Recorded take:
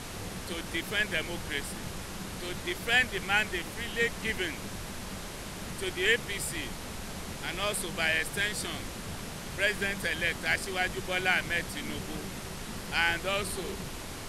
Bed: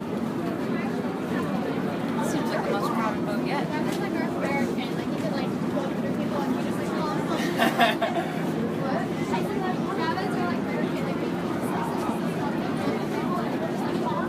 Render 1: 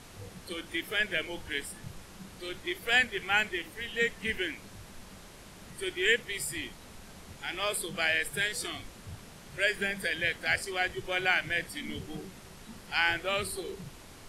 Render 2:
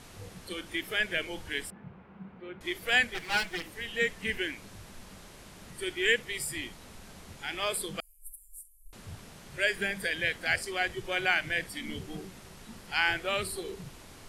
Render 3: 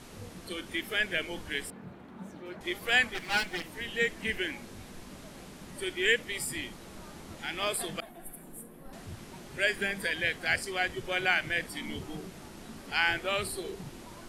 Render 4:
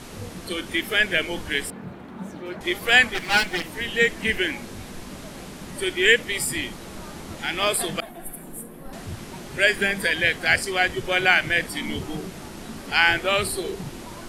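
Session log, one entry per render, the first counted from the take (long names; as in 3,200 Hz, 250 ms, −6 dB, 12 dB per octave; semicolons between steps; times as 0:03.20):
noise reduction from a noise print 10 dB
0:01.70–0:02.61: loudspeaker in its box 100–2,000 Hz, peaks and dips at 110 Hz −7 dB, 200 Hz +5 dB, 300 Hz −6 dB, 590 Hz −4 dB, 1,200 Hz −3 dB, 1,800 Hz −7 dB; 0:03.14–0:03.63: lower of the sound and its delayed copy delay 6.1 ms; 0:08.00–0:08.93: inverse Chebyshev band-stop filter 110–3,900 Hz, stop band 60 dB
mix in bed −23.5 dB
level +9 dB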